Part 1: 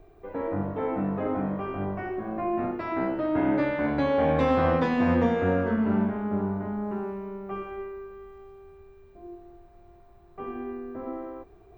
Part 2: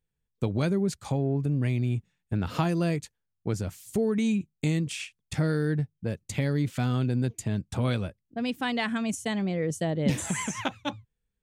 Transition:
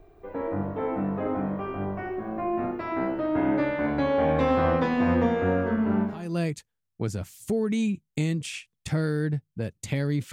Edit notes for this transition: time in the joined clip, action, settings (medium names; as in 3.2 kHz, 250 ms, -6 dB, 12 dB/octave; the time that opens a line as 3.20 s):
part 1
6.20 s: go over to part 2 from 2.66 s, crossfade 0.38 s quadratic